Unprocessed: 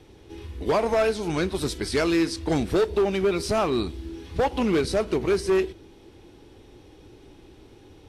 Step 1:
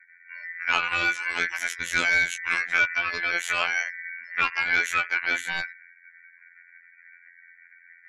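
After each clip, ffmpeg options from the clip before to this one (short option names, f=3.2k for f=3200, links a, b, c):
-af "aeval=exprs='val(0)*sin(2*PI*1900*n/s)':c=same,afftfilt=real='re*gte(hypot(re,im),0.00631)':imag='im*gte(hypot(re,im),0.00631)':win_size=1024:overlap=0.75,afftfilt=real='hypot(re,im)*cos(PI*b)':imag='0':win_size=2048:overlap=0.75,volume=4.5dB"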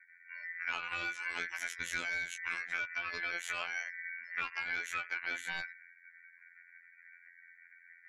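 -af "acompressor=threshold=-27dB:ratio=6,volume=-6dB"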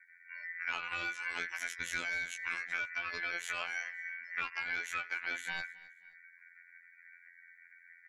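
-af "aecho=1:1:263|526:0.0794|0.0238"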